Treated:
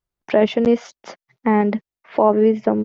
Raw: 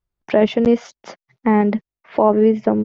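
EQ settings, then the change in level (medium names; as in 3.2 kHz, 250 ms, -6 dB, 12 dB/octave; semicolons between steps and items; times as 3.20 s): bass shelf 140 Hz -7 dB; 0.0 dB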